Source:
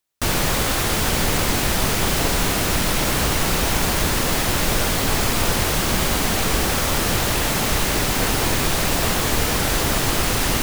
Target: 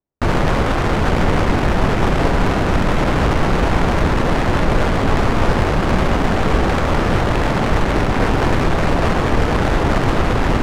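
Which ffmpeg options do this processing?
ffmpeg -i in.wav -af "adynamicsmooth=sensitivity=1:basefreq=600,volume=6.5dB" out.wav

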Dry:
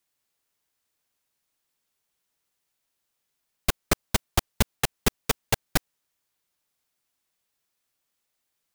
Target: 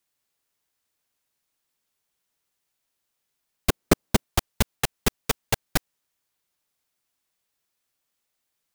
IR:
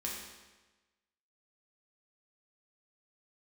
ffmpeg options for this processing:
-filter_complex "[0:a]asettb=1/sr,asplit=3[link_01][link_02][link_03];[link_01]atrim=end=3.694[link_04];[link_02]atrim=start=3.69:end=4.24,asetpts=PTS-STARTPTS,afade=type=in:duration=0.004:curve=qsin,afade=type=out:start_time=0.546:duration=0.004:curve=qsin,equalizer=frequency=270:width=0.5:gain=9.5[link_05];[link_03]atrim=start=4.236[link_06];[link_04][link_05]acrossfade=duration=0.004:curve1=hsin:curve2=qsin[link_07];[link_07][link_06]acrossfade=duration=0.004:curve1=qsin:curve2=hsin"

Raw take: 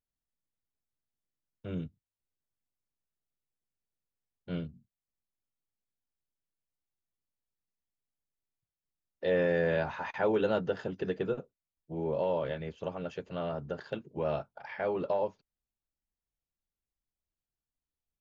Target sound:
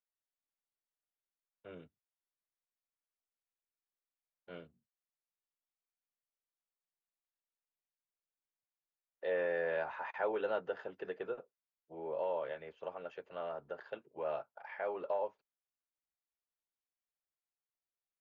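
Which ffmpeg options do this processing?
ffmpeg -i in.wav -filter_complex "[0:a]acrossover=split=410 2800:gain=0.1 1 0.178[link_01][link_02][link_03];[link_01][link_02][link_03]amix=inputs=3:normalize=0,volume=-3.5dB" out.wav

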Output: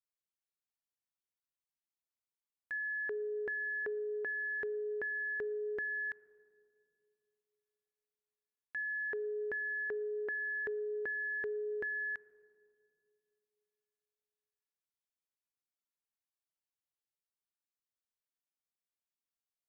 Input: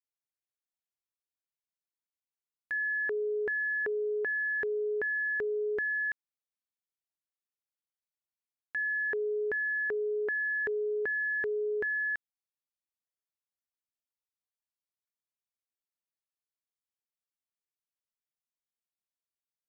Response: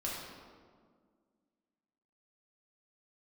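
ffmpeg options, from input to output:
-filter_complex "[0:a]asplit=2[link_01][link_02];[1:a]atrim=start_sample=2205,asetrate=30870,aresample=44100,lowpass=2000[link_03];[link_02][link_03]afir=irnorm=-1:irlink=0,volume=-23dB[link_04];[link_01][link_04]amix=inputs=2:normalize=0,volume=-6dB"

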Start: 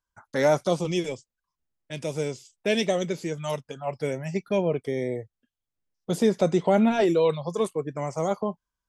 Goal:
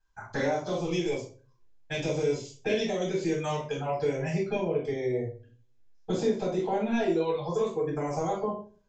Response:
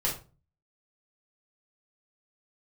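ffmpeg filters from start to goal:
-filter_complex "[0:a]equalizer=frequency=140:width_type=o:width=1:gain=-4.5,acompressor=threshold=-35dB:ratio=6[link_01];[1:a]atrim=start_sample=2205,asetrate=37044,aresample=44100[link_02];[link_01][link_02]afir=irnorm=-1:irlink=0,aresample=16000,aresample=44100"

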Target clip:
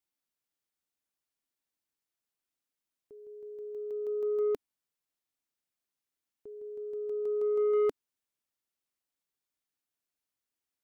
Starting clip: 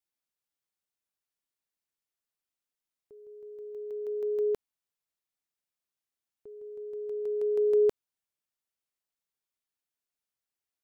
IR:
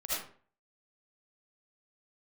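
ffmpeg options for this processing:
-af "asoftclip=type=tanh:threshold=-24dB,equalizer=frequency=280:width=2.6:gain=5"

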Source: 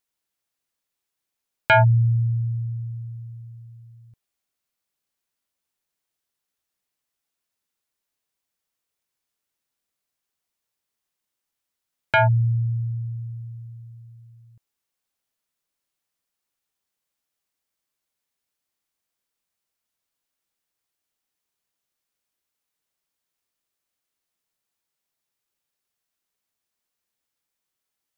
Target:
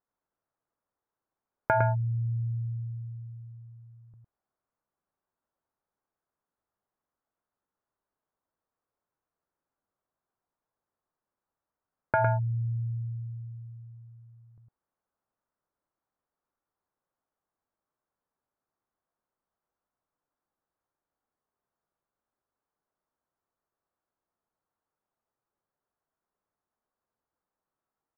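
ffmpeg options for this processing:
ffmpeg -i in.wav -filter_complex "[0:a]lowpass=frequency=1400:width=0.5412,lowpass=frequency=1400:width=1.3066,equalizer=frequency=860:width=0.59:gain=3,acompressor=threshold=-23dB:ratio=6,asplit=2[link_01][link_02];[link_02]aecho=0:1:107:0.531[link_03];[link_01][link_03]amix=inputs=2:normalize=0" out.wav

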